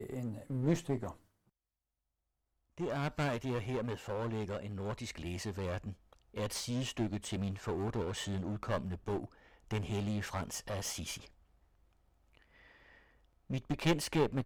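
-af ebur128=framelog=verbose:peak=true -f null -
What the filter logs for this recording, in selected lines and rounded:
Integrated loudness:
  I:         -37.6 LUFS
  Threshold: -48.3 LUFS
Loudness range:
  LRA:         3.5 LU
  Threshold: -59.4 LUFS
  LRA low:   -41.6 LUFS
  LRA high:  -38.1 LUFS
True peak:
  Peak:      -17.2 dBFS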